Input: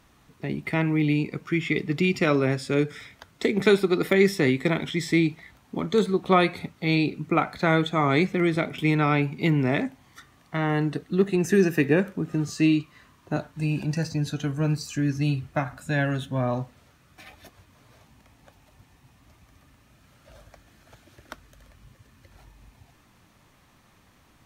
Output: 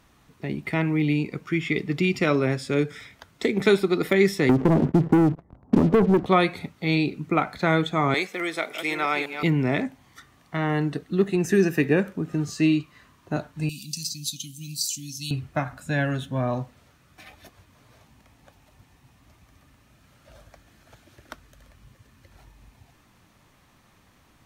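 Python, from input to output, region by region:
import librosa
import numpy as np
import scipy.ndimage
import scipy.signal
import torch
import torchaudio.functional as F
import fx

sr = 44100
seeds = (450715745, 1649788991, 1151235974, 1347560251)

y = fx.chain(x, sr, fx.bessel_lowpass(hz=590.0, order=6),
    fx.leveller(passes=3),
    fx.band_squash(depth_pct=100), at=(4.49, 6.26))
y = fx.chain(y, sr, fx.reverse_delay(ms=560, wet_db=-8.0),
    fx.highpass(hz=520.0, slope=12),
    fx.high_shelf(hz=5200.0, db=8.5), at=(8.14, 9.43))
y = fx.chain(y, sr, fx.ellip_bandstop(low_hz=240.0, high_hz=3300.0, order=3, stop_db=40),
    fx.tilt_eq(slope=4.5), at=(13.69, 15.31))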